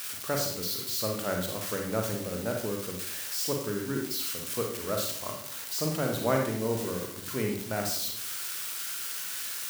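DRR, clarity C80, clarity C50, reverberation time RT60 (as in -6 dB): 1.0 dB, 8.0 dB, 4.0 dB, 0.60 s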